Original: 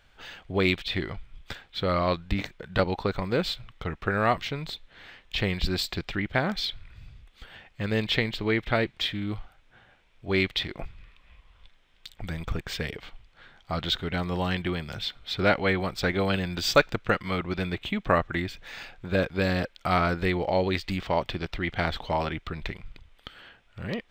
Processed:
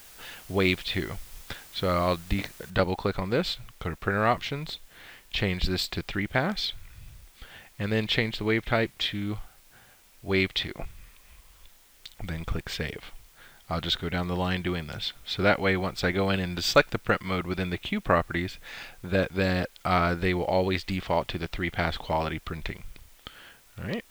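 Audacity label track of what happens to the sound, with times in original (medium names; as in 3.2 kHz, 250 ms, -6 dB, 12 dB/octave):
2.700000	2.700000	noise floor step -50 dB -59 dB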